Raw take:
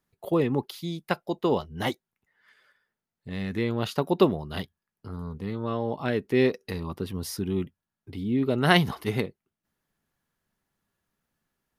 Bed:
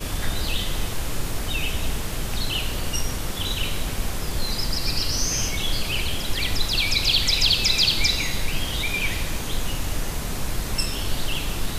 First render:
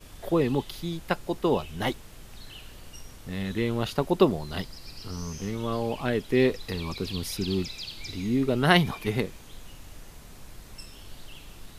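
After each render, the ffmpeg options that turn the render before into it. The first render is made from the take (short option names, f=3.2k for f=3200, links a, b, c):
-filter_complex "[1:a]volume=-19dB[a];[0:a][a]amix=inputs=2:normalize=0"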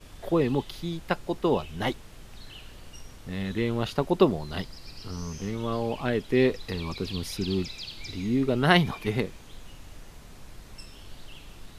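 -af "highshelf=f=9.6k:g=-8.5"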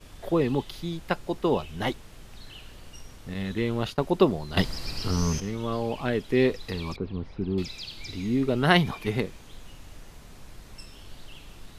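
-filter_complex "[0:a]asettb=1/sr,asplit=3[a][b][c];[a]atrim=end=3.344[d];[b]atrim=start=3.34:end=3.99,asetpts=PTS-STARTPTS,afade=t=in:d=0.004:c=qsin,afade=t=out:st=0.646:d=0.004:c=qsin,agate=range=-33dB:threshold=-36dB:ratio=3:release=100:detection=peak[e];[c]atrim=start=3.986[f];[d][e]acrossfade=d=0.004:c1=hsin:c2=qsin[g];[g][f]acrossfade=d=0.004:c1=qsin:c2=hsin,asettb=1/sr,asplit=3[h][i][j];[h]atrim=end=6.964[k];[i]atrim=start=6.96:end=7.58,asetpts=PTS-STARTPTS,afade=t=in:d=0.004:c=qsin,afade=t=out:st=0.616:d=0.004:c=qsin,lowpass=1.2k[l];[j]atrim=start=7.576[m];[k][l]acrossfade=d=0.004:c1=hsin:c2=qsin[n];[n][m]acrossfade=d=0.004:c1=qsin:c2=hsin,asplit=3[o][p][q];[o]atrim=end=4.572[r];[p]atrim=start=4.568:end=5.402,asetpts=PTS-STARTPTS,volume=10dB[s];[q]atrim=start=5.398[t];[r][s]acrossfade=d=0.004:c1=hsin:c2=hsin[u];[u][t]acrossfade=d=0.004:c1=hsin:c2=hsin"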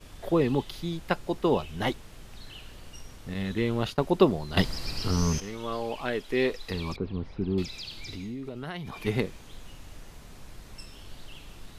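-filter_complex "[0:a]asettb=1/sr,asplit=3[a][b][c];[a]atrim=end=5.394[d];[b]atrim=start=5.39:end=6.71,asetpts=PTS-STARTPTS,afade=t=in:d=0.004:c=qsin,afade=t=out:st=1.316:d=0.004:c=qsin,equalizer=f=120:t=o:w=2.6:g=-10.5[e];[c]atrim=start=6.706[f];[d][e]acrossfade=d=0.004:c1=hsin:c2=qsin[g];[g][f]acrossfade=d=0.004:c1=qsin:c2=hsin,asettb=1/sr,asplit=3[h][i][j];[h]atrim=end=7.654[k];[i]atrim=start=7.65:end=8.97,asetpts=PTS-STARTPTS,afade=t=in:d=0.004:c=qsin,afade=t=out:st=1.316:d=0.004:c=qsin,acompressor=threshold=-34dB:ratio=6:attack=3.2:release=140:knee=1:detection=peak[l];[j]atrim=start=8.966[m];[k][l]acrossfade=d=0.004:c1=hsin:c2=qsin[n];[n][m]acrossfade=d=0.004:c1=qsin:c2=hsin"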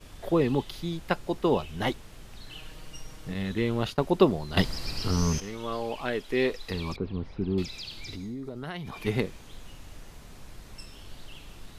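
-filter_complex "[0:a]asettb=1/sr,asplit=3[a][b][c];[a]atrim=end=2.504[d];[b]atrim=start=2.5:end=3.32,asetpts=PTS-STARTPTS,afade=t=in:d=0.004:c=qsin,afade=t=out:st=0.816:d=0.004:c=qsin,aecho=1:1:6.4:0.65,atrim=end_sample=36162[e];[c]atrim=start=3.316[f];[d][e]acrossfade=d=0.004:c1=hsin:c2=qsin[g];[g][f]acrossfade=d=0.004:c1=qsin:c2=hsin,asettb=1/sr,asplit=3[h][i][j];[h]atrim=end=8.164[k];[i]atrim=start=8.16:end=8.64,asetpts=PTS-STARTPTS,afade=t=in:d=0.004:c=qsin,afade=t=out:st=0.476:d=0.004:c=qsin,equalizer=f=2.7k:t=o:w=0.55:g=-13[l];[j]atrim=start=8.636[m];[k][l]acrossfade=d=0.004:c1=hsin:c2=qsin[n];[n][m]acrossfade=d=0.004:c1=qsin:c2=hsin"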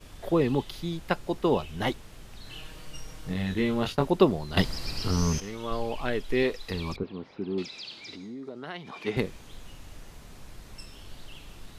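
-filter_complex "[0:a]asettb=1/sr,asplit=3[a][b][c];[a]atrim=end=2.434[d];[b]atrim=start=2.43:end=4.08,asetpts=PTS-STARTPTS,afade=t=in:d=0.004:c=qsin,afade=t=out:st=1.646:d=0.004:c=qsin,asplit=2[e][f];[f]adelay=22,volume=-4.5dB[g];[e][g]amix=inputs=2:normalize=0,atrim=end_sample=72765[h];[c]atrim=start=4.076[i];[d][h]acrossfade=d=0.004:c1=hsin:c2=qsin[j];[j][i]acrossfade=d=0.004:c1=qsin:c2=hsin,asettb=1/sr,asplit=3[k][l][m];[k]atrim=end=5.714[n];[l]atrim=start=5.71:end=6.43,asetpts=PTS-STARTPTS,afade=t=in:d=0.004:c=qsin,afade=t=out:st=0.716:d=0.004:c=qsin,lowshelf=f=83:g=12[o];[m]atrim=start=6.426[p];[n][o]acrossfade=d=0.004:c1=hsin:c2=qsin[q];[q][p]acrossfade=d=0.004:c1=qsin:c2=hsin,asettb=1/sr,asplit=3[r][s][t];[r]atrim=end=7.034[u];[s]atrim=start=7.03:end=9.17,asetpts=PTS-STARTPTS,afade=t=in:d=0.004:c=qsin,afade=t=out:st=2.136:d=0.004:c=qsin,highpass=240,lowpass=6k[v];[t]atrim=start=9.166[w];[u][v]acrossfade=d=0.004:c1=hsin:c2=qsin[x];[x][w]acrossfade=d=0.004:c1=qsin:c2=hsin"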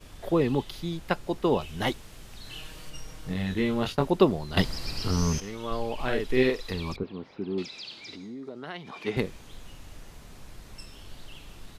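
-filter_complex "[0:a]asettb=1/sr,asplit=3[a][b][c];[a]atrim=end=1.614[d];[b]atrim=start=1.61:end=2.9,asetpts=PTS-STARTPTS,afade=t=in:d=0.004:c=qsin,afade=t=out:st=1.286:d=0.004:c=qsin,equalizer=f=12k:t=o:w=2.9:g=4[e];[c]atrim=start=2.896[f];[d][e]acrossfade=d=0.004:c1=hsin:c2=qsin[g];[g][f]acrossfade=d=0.004:c1=qsin:c2=hsin,asplit=3[h][i][j];[h]afade=t=out:st=5.98:d=0.02[k];[i]asplit=2[l][m];[m]adelay=47,volume=-2.5dB[n];[l][n]amix=inputs=2:normalize=0,afade=t=in:st=5.98:d=0.02,afade=t=out:st=6.72:d=0.02[o];[j]afade=t=in:st=6.72:d=0.02[p];[k][o][p]amix=inputs=3:normalize=0"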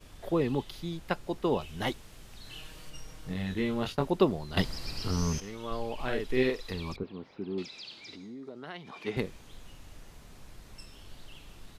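-af "volume=-4dB"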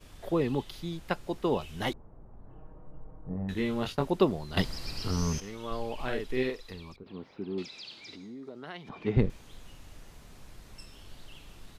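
-filter_complex "[0:a]asettb=1/sr,asplit=3[a][b][c];[a]atrim=end=1.934[d];[b]atrim=start=1.93:end=3.49,asetpts=PTS-STARTPTS,afade=t=in:d=0.004:c=qsin,afade=t=out:st=1.556:d=0.004:c=qsin,lowpass=f=1k:w=0.5412,lowpass=f=1k:w=1.3066[e];[c]atrim=start=3.486[f];[d][e]acrossfade=d=0.004:c1=hsin:c2=qsin[g];[g][f]acrossfade=d=0.004:c1=qsin:c2=hsin,asettb=1/sr,asplit=3[h][i][j];[h]atrim=end=8.894[k];[i]atrim=start=8.89:end=9.3,asetpts=PTS-STARTPTS,afade=t=in:d=0.004:c=qsin,afade=t=out:st=0.406:d=0.004:c=qsin,aemphasis=mode=reproduction:type=riaa[l];[j]atrim=start=9.296[m];[k][l]acrossfade=d=0.004:c1=hsin:c2=qsin[n];[n][m]acrossfade=d=0.004:c1=qsin:c2=hsin,asplit=2[o][p];[o]atrim=end=7.06,asetpts=PTS-STARTPTS,afade=t=out:st=6:d=1.06:silence=0.211349[q];[p]atrim=start=7.06,asetpts=PTS-STARTPTS,afade=t=in:d=0.004:c=hsin:silence=0.211349[r];[q][r]concat=n=2:v=0:a=1"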